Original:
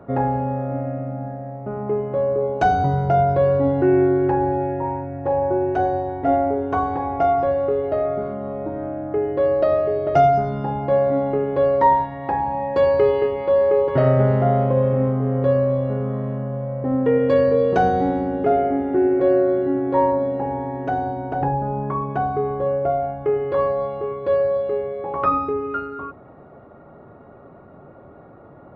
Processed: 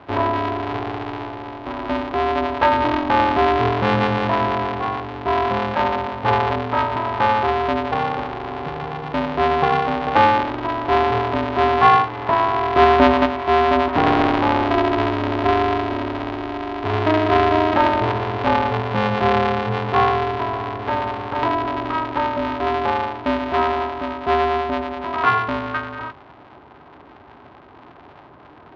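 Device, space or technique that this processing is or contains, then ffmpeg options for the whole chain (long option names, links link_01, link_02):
ring modulator pedal into a guitar cabinet: -filter_complex "[0:a]asettb=1/sr,asplit=3[link_01][link_02][link_03];[link_01]atrim=end=11.934[link_04];[link_02]atrim=start=11.93:end=13.26,asetpts=PTS-STARTPTS,afade=type=in:duration=0.004:curve=qsin,afade=type=out:start_time=1.326:duration=0.004:curve=qsin,equalizer=frequency=380:width=0.44:gain=3.5[link_05];[link_03]atrim=start=13.256[link_06];[link_04][link_05]acrossfade=duration=0.004:curve1=hsin:curve2=qsin[link_07];[link_07][link_06]acrossfade=duration=0.004:curve1=qsin:curve2=hsin,aeval=exprs='val(0)*sgn(sin(2*PI*160*n/s))':channel_layout=same,highpass=83,equalizer=frequency=200:width_type=q:width=4:gain=-7,equalizer=frequency=500:width_type=q:width=4:gain=-9,equalizer=frequency=1000:width_type=q:width=4:gain=4,lowpass=frequency=3600:width=0.5412,lowpass=frequency=3600:width=1.3066,volume=1.5dB"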